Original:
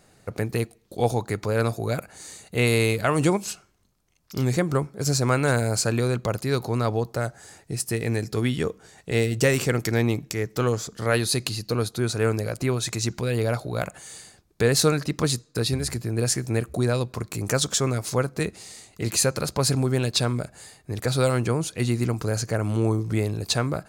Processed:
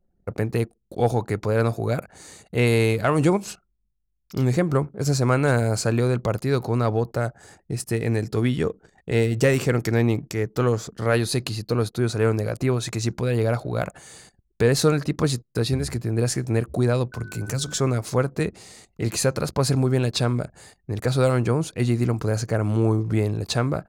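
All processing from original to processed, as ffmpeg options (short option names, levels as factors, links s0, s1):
-filter_complex "[0:a]asettb=1/sr,asplit=3[s0][s1][s2];[s0]atrim=end=17.124[s3];[s1]atrim=start=17.12:end=17.79,asetpts=PTS-STARTPTS,afade=t=in:d=0.004:c=qsin,afade=t=out:st=0.666:d=0.004:c=qsin,aeval=exprs='val(0)+0.01*sin(2*PI*1500*n/s)':c=same,bandreject=f=50:t=h:w=6,bandreject=f=100:t=h:w=6,bandreject=f=150:t=h:w=6,bandreject=f=200:t=h:w=6,bandreject=f=250:t=h:w=6,bandreject=f=300:t=h:w=6,bandreject=f=350:t=h:w=6,bandreject=f=400:t=h:w=6,acrossover=split=200|3000[s4][s5][s6];[s5]acompressor=threshold=0.0141:ratio=3:attack=3.2:release=140:knee=2.83:detection=peak[s7];[s4][s7][s6]amix=inputs=3:normalize=0[s8];[s2]atrim=start=17.786[s9];[s3][s8]acrossfade=d=0.004:c1=hsin:c2=qsin[s10];[s10][s9]acrossfade=d=0.004:c1=qsin:c2=hsin,anlmdn=0.0158,highshelf=f=2500:g=-7.5,acontrast=58,volume=0.668"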